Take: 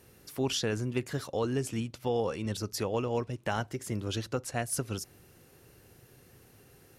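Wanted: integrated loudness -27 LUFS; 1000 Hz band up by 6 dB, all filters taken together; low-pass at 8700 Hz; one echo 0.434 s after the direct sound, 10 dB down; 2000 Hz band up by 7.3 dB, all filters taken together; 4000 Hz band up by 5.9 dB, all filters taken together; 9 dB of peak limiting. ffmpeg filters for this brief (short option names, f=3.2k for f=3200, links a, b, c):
-af "lowpass=8.7k,equalizer=f=1k:t=o:g=6.5,equalizer=f=2k:t=o:g=6,equalizer=f=4k:t=o:g=5.5,alimiter=limit=-19.5dB:level=0:latency=1,aecho=1:1:434:0.316,volume=5dB"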